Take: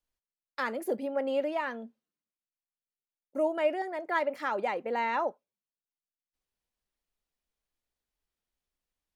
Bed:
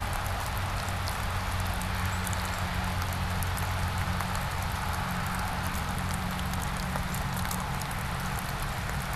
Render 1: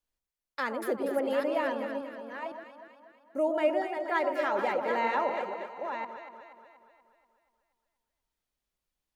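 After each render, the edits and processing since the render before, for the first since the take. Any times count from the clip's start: chunks repeated in reverse 504 ms, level -6.5 dB; on a send: echo whose repeats swap between lows and highs 120 ms, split 1.1 kHz, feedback 72%, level -5.5 dB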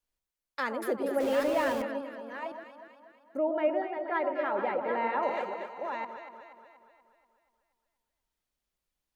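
1.20–1.82 s: jump at every zero crossing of -34.5 dBFS; 3.37–5.23 s: distance through air 360 m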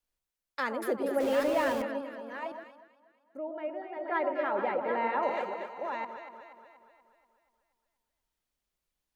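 2.58–4.12 s: dip -9 dB, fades 0.29 s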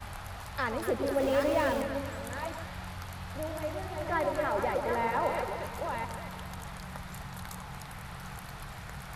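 add bed -10.5 dB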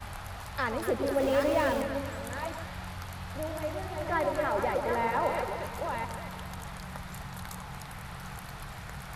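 trim +1 dB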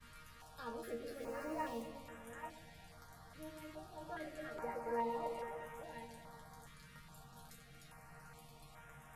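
chord resonator D#3 fifth, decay 0.26 s; step-sequenced notch 2.4 Hz 740–4400 Hz

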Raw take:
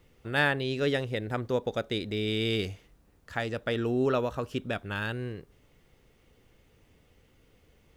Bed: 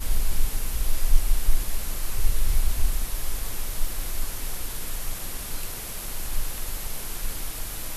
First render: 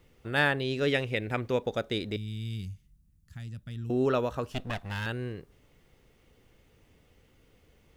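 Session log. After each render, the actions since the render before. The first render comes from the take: 0.88–1.63 s: peaking EQ 2.4 kHz +10 dB 0.47 oct; 2.16–3.90 s: FFT filter 170 Hz 0 dB, 480 Hz -30 dB, 3.9 kHz -14 dB, 9.6 kHz -6 dB; 4.52–5.06 s: comb filter that takes the minimum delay 1.1 ms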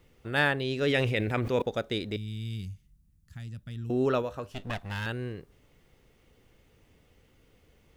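0.80–1.62 s: decay stretcher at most 28 dB/s; 4.22–4.63 s: feedback comb 99 Hz, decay 0.19 s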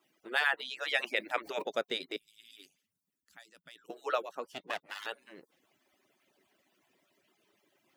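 harmonic-percussive separation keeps percussive; high-pass 390 Hz 12 dB/octave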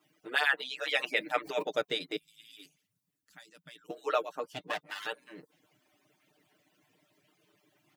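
peaking EQ 110 Hz +9 dB 1.5 oct; comb 6.6 ms, depth 75%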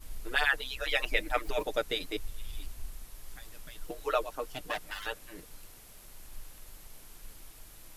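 add bed -18.5 dB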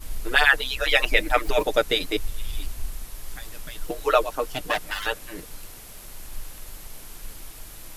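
trim +10 dB; peak limiter -3 dBFS, peak gain reduction 1.5 dB

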